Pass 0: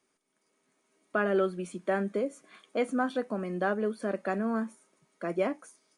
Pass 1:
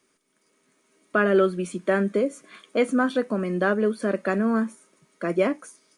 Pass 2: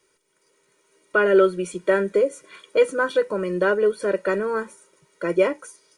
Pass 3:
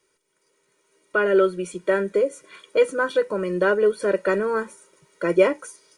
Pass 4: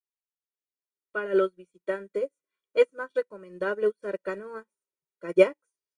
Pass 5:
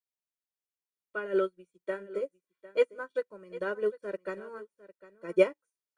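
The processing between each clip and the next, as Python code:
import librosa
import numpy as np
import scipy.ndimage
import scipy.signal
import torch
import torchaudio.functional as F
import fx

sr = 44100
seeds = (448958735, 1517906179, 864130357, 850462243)

y1 = fx.peak_eq(x, sr, hz=780.0, db=-7.0, octaves=0.48)
y1 = y1 * librosa.db_to_amplitude(8.0)
y2 = y1 + 0.92 * np.pad(y1, (int(2.1 * sr / 1000.0), 0))[:len(y1)]
y3 = fx.rider(y2, sr, range_db=3, speed_s=2.0)
y4 = fx.upward_expand(y3, sr, threshold_db=-40.0, expansion=2.5)
y5 = y4 + 10.0 ** (-17.5 / 20.0) * np.pad(y4, (int(753 * sr / 1000.0), 0))[:len(y4)]
y5 = y5 * librosa.db_to_amplitude(-4.5)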